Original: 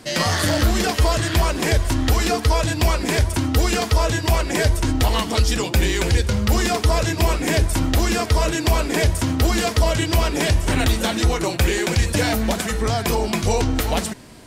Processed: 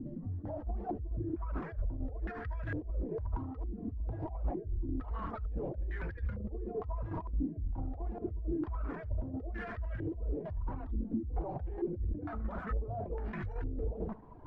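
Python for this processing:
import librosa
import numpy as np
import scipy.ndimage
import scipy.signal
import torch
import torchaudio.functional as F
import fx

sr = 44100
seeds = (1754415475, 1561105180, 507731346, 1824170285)

p1 = fx.quant_float(x, sr, bits=2)
p2 = fx.comb_fb(p1, sr, f0_hz=89.0, decay_s=1.6, harmonics='all', damping=0.0, mix_pct=40)
p3 = p2 + fx.echo_single(p2, sr, ms=76, db=-10.5, dry=0)
p4 = fx.over_compress(p3, sr, threshold_db=-30.0, ratio=-1.0)
p5 = fx.dereverb_blind(p4, sr, rt60_s=0.99)
p6 = 10.0 ** (-29.5 / 20.0) * np.tanh(p5 / 10.0 ** (-29.5 / 20.0))
p7 = fx.tilt_eq(p6, sr, slope=-1.5)
p8 = fx.tremolo_shape(p7, sr, shape='saw_down', hz=4.5, depth_pct=50)
p9 = fx.low_shelf(p8, sr, hz=82.0, db=10.0)
p10 = fx.filter_held_lowpass(p9, sr, hz=2.2, low_hz=270.0, high_hz=1700.0)
y = p10 * librosa.db_to_amplitude(-9.0)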